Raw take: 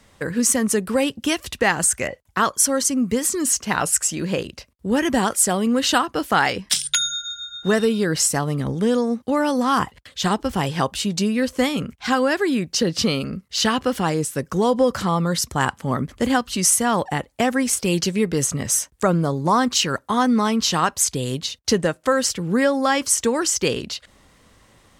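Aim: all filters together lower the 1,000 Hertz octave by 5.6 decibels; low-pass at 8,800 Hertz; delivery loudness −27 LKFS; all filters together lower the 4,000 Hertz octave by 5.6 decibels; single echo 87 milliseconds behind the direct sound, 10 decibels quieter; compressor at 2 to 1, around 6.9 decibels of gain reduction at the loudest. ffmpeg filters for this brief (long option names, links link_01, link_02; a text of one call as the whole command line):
ffmpeg -i in.wav -af "lowpass=8800,equalizer=frequency=1000:width_type=o:gain=-7,equalizer=frequency=4000:width_type=o:gain=-7,acompressor=threshold=-28dB:ratio=2,aecho=1:1:87:0.316,volume=1dB" out.wav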